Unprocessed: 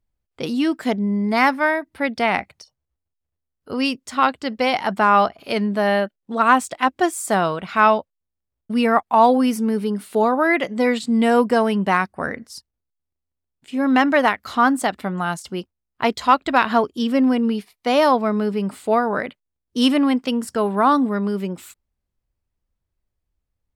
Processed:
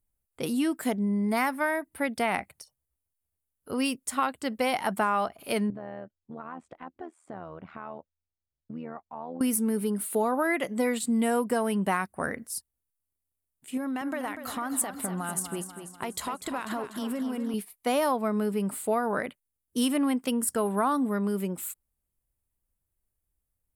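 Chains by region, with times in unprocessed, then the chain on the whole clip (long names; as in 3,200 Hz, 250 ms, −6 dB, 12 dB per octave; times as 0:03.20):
0:05.70–0:09.41: downward compressor 3 to 1, threshold −29 dBFS + amplitude modulation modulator 80 Hz, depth 60% + head-to-tape spacing loss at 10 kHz 43 dB
0:13.77–0:17.54: downward compressor 16 to 1, threshold −23 dBFS + feedback echo with a swinging delay time 245 ms, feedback 55%, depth 53 cents, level −9.5 dB
whole clip: high shelf with overshoot 7,200 Hz +13 dB, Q 1.5; downward compressor, threshold −17 dBFS; level −5 dB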